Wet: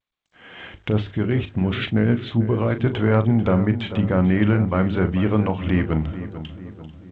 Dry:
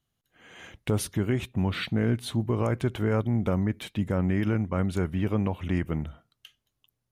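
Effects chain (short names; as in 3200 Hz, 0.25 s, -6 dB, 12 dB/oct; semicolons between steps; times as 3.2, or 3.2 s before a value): 0.76–2.87 rotary speaker horn 8 Hz; doubler 38 ms -11.5 dB; darkening echo 0.442 s, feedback 52%, low-pass 1900 Hz, level -12 dB; bit-crush 11-bit; elliptic low-pass 3400 Hz, stop band 60 dB; notches 50/100/150/200/250/300/350/400/450 Hz; gain +8.5 dB; G.722 64 kbps 16000 Hz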